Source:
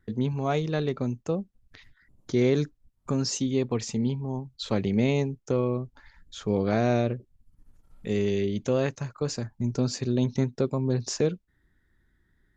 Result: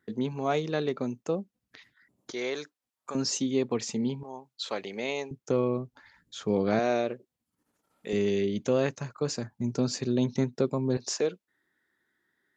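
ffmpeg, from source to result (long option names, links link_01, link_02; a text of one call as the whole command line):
ffmpeg -i in.wav -af "asetnsamples=nb_out_samples=441:pad=0,asendcmd='2.31 highpass f 680;3.15 highpass f 200;4.23 highpass f 580;5.31 highpass f 150;6.79 highpass f 350;8.13 highpass f 150;10.97 highpass f 390',highpass=220" out.wav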